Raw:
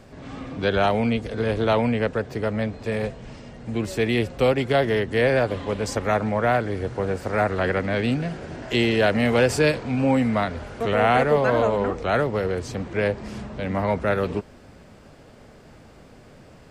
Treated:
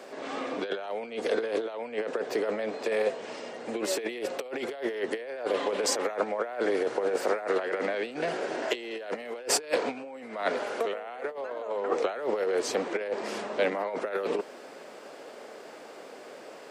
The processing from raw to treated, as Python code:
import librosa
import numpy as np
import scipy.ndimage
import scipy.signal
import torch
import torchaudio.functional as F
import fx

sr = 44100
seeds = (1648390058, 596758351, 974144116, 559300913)

y = fx.over_compress(x, sr, threshold_db=-27.0, ratio=-0.5)
y = fx.ladder_highpass(y, sr, hz=320.0, resonance_pct=25)
y = y * 10.0 ** (5.5 / 20.0)